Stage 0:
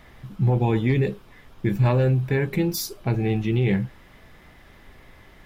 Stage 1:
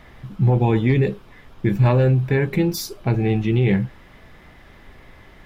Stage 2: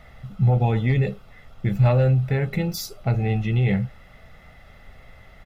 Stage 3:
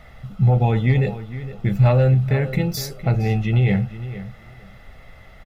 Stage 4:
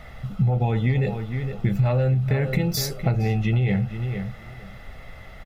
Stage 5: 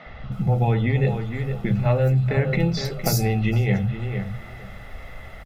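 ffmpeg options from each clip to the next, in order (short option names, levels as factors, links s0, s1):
-af "highshelf=f=6200:g=-6.5,volume=1.5"
-af "aecho=1:1:1.5:0.65,volume=0.631"
-filter_complex "[0:a]asplit=2[s0][s1];[s1]adelay=462,lowpass=f=3500:p=1,volume=0.211,asplit=2[s2][s3];[s3]adelay=462,lowpass=f=3500:p=1,volume=0.18[s4];[s0][s2][s4]amix=inputs=3:normalize=0,volume=1.33"
-af "acompressor=threshold=0.0891:ratio=6,volume=1.41"
-filter_complex "[0:a]acrossover=split=160|4700[s0][s1][s2];[s0]adelay=60[s3];[s2]adelay=320[s4];[s3][s1][s4]amix=inputs=3:normalize=0,volume=1.41"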